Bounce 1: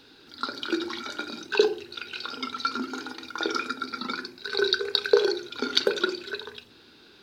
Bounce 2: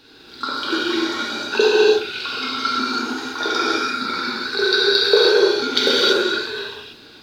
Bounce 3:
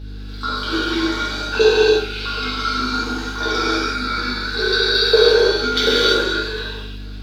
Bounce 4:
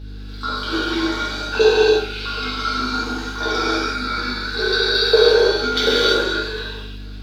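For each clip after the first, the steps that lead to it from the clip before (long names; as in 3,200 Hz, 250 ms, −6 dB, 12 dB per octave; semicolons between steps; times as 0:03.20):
reverb whose tail is shaped and stops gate 360 ms flat, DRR −7.5 dB; level +2 dB
hum with harmonics 50 Hz, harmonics 8, −31 dBFS −8 dB per octave; coupled-rooms reverb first 0.33 s, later 1.9 s, from −28 dB, DRR −2 dB; level −4 dB
dynamic equaliser 710 Hz, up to +5 dB, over −33 dBFS, Q 1.8; level −1.5 dB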